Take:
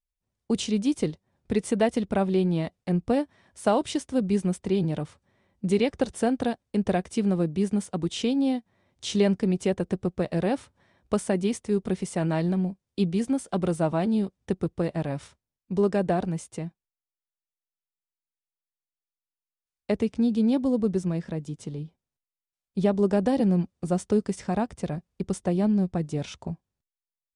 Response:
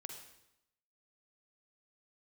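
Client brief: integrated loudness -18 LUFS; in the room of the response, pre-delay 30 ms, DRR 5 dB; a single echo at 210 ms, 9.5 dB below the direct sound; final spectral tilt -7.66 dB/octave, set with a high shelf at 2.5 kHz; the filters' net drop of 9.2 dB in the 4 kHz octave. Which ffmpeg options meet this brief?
-filter_complex "[0:a]highshelf=f=2500:g=-8,equalizer=f=4000:t=o:g=-5.5,aecho=1:1:210:0.335,asplit=2[s0][s1];[1:a]atrim=start_sample=2205,adelay=30[s2];[s1][s2]afir=irnorm=-1:irlink=0,volume=0.891[s3];[s0][s3]amix=inputs=2:normalize=0,volume=2.37"

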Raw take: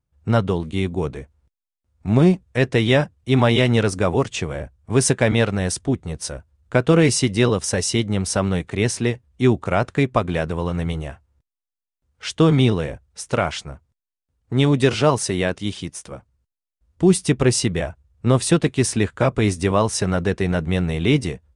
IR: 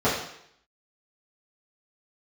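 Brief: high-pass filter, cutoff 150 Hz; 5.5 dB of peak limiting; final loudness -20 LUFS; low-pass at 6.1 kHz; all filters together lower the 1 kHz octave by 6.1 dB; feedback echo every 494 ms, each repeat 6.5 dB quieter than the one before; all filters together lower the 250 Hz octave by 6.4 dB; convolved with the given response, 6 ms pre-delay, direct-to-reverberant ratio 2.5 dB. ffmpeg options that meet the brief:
-filter_complex "[0:a]highpass=150,lowpass=6100,equalizer=f=250:t=o:g=-7.5,equalizer=f=1000:t=o:g=-8,alimiter=limit=0.299:level=0:latency=1,aecho=1:1:494|988|1482|1976|2470|2964:0.473|0.222|0.105|0.0491|0.0231|0.0109,asplit=2[s0][s1];[1:a]atrim=start_sample=2205,adelay=6[s2];[s1][s2]afir=irnorm=-1:irlink=0,volume=0.106[s3];[s0][s3]amix=inputs=2:normalize=0,volume=1.26"

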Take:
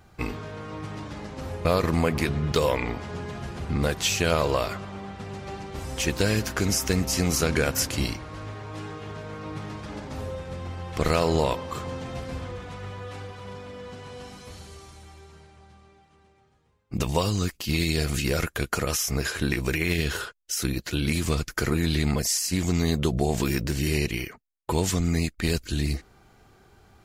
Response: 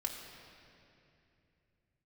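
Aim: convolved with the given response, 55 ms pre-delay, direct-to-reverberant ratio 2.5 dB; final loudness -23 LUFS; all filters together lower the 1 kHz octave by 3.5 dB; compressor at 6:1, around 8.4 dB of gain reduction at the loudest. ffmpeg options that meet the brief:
-filter_complex "[0:a]equalizer=f=1000:t=o:g=-4.5,acompressor=threshold=0.0398:ratio=6,asplit=2[s0][s1];[1:a]atrim=start_sample=2205,adelay=55[s2];[s1][s2]afir=irnorm=-1:irlink=0,volume=0.668[s3];[s0][s3]amix=inputs=2:normalize=0,volume=2.82"

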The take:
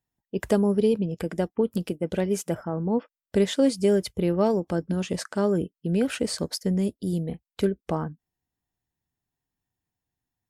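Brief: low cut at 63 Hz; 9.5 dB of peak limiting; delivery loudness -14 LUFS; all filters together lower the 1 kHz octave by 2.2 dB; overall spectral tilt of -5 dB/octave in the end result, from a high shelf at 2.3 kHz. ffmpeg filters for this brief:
-af "highpass=63,equalizer=f=1000:t=o:g=-4.5,highshelf=f=2300:g=8.5,volume=5.96,alimiter=limit=0.708:level=0:latency=1"

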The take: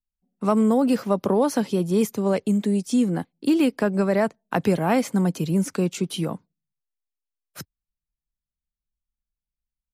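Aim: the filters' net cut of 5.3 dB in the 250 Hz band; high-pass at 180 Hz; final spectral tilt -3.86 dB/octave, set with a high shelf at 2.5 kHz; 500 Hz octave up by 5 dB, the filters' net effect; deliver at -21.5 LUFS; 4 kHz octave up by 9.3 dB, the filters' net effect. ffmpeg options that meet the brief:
-af "highpass=180,equalizer=f=250:t=o:g=-7.5,equalizer=f=500:t=o:g=8,highshelf=f=2500:g=7.5,equalizer=f=4000:t=o:g=5.5"

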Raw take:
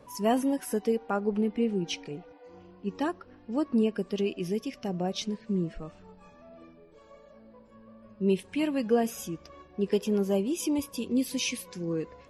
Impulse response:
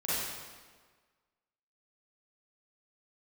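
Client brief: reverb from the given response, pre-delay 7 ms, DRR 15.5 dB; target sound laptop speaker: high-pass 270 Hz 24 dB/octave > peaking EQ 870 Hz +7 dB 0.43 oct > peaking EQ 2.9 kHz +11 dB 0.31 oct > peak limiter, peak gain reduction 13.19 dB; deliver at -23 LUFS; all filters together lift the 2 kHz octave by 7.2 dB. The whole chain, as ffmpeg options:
-filter_complex "[0:a]equalizer=f=2000:t=o:g=4.5,asplit=2[s0][s1];[1:a]atrim=start_sample=2205,adelay=7[s2];[s1][s2]afir=irnorm=-1:irlink=0,volume=0.0708[s3];[s0][s3]amix=inputs=2:normalize=0,highpass=f=270:w=0.5412,highpass=f=270:w=1.3066,equalizer=f=870:t=o:w=0.43:g=7,equalizer=f=2900:t=o:w=0.31:g=11,volume=3.98,alimiter=limit=0.237:level=0:latency=1"

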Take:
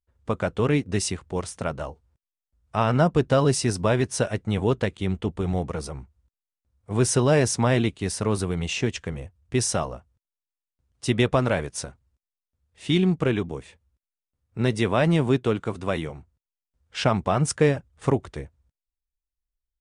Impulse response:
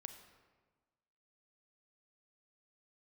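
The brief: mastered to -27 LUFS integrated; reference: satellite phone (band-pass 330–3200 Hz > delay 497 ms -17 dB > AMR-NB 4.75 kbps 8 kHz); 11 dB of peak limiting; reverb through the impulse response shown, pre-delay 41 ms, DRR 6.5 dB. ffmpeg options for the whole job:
-filter_complex "[0:a]alimiter=limit=0.126:level=0:latency=1,asplit=2[s0][s1];[1:a]atrim=start_sample=2205,adelay=41[s2];[s1][s2]afir=irnorm=-1:irlink=0,volume=0.841[s3];[s0][s3]amix=inputs=2:normalize=0,highpass=330,lowpass=3200,aecho=1:1:497:0.141,volume=2.51" -ar 8000 -c:a libopencore_amrnb -b:a 4750

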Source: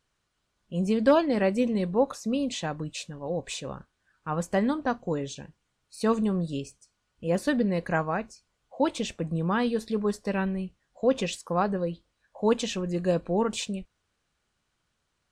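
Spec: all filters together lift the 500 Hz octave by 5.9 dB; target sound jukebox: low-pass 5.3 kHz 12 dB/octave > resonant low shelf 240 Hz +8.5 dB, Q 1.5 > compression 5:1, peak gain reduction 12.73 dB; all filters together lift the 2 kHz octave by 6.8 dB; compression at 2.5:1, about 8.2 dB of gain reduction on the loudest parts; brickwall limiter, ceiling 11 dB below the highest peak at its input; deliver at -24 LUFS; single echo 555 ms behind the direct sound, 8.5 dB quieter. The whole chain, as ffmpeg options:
-af "equalizer=f=500:t=o:g=8,equalizer=f=2000:t=o:g=8.5,acompressor=threshold=0.0794:ratio=2.5,alimiter=limit=0.0794:level=0:latency=1,lowpass=5300,lowshelf=f=240:t=q:w=1.5:g=8.5,aecho=1:1:555:0.376,acompressor=threshold=0.0282:ratio=5,volume=3.55"

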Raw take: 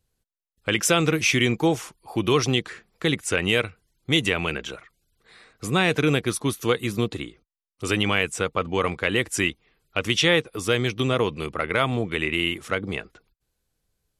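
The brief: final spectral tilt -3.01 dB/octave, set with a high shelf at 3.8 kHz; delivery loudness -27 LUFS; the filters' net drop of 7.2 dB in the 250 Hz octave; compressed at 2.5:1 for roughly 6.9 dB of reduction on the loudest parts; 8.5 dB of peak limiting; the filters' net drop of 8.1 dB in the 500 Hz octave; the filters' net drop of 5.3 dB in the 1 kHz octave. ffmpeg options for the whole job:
-af "equalizer=f=250:t=o:g=-8,equalizer=f=500:t=o:g=-6,equalizer=f=1000:t=o:g=-6,highshelf=f=3800:g=4.5,acompressor=threshold=0.0501:ratio=2.5,volume=1.68,alimiter=limit=0.211:level=0:latency=1"

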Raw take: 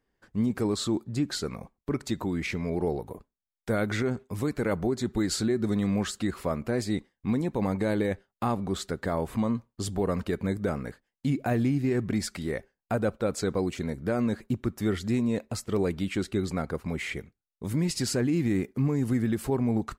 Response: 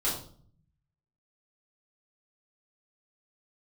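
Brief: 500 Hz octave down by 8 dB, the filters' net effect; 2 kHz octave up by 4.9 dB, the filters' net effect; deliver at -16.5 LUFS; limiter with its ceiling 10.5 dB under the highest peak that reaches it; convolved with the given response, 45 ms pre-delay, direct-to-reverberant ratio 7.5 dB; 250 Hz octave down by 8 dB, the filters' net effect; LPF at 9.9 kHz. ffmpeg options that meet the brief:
-filter_complex "[0:a]lowpass=9900,equalizer=f=250:t=o:g=-8.5,equalizer=f=500:t=o:g=-7.5,equalizer=f=2000:t=o:g=6.5,alimiter=level_in=1.33:limit=0.0631:level=0:latency=1,volume=0.75,asplit=2[s0][s1];[1:a]atrim=start_sample=2205,adelay=45[s2];[s1][s2]afir=irnorm=-1:irlink=0,volume=0.168[s3];[s0][s3]amix=inputs=2:normalize=0,volume=9.44"

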